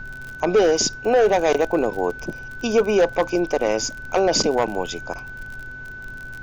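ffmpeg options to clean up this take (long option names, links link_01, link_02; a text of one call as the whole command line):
ffmpeg -i in.wav -af "adeclick=threshold=4,bandreject=frequency=128.4:width_type=h:width=4,bandreject=frequency=256.8:width_type=h:width=4,bandreject=frequency=385.2:width_type=h:width=4,bandreject=frequency=1500:width=30,afftdn=noise_reduction=30:noise_floor=-36" out.wav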